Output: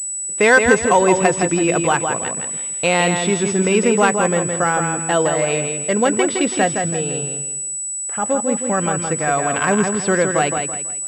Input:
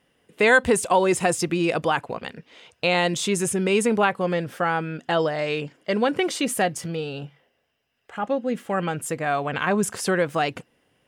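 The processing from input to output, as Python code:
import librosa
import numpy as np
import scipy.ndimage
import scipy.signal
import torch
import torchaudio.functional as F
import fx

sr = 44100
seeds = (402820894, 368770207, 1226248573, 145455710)

y = fx.echo_feedback(x, sr, ms=165, feedback_pct=32, wet_db=-5.5)
y = fx.pwm(y, sr, carrier_hz=7900.0)
y = F.gain(torch.from_numpy(y), 4.5).numpy()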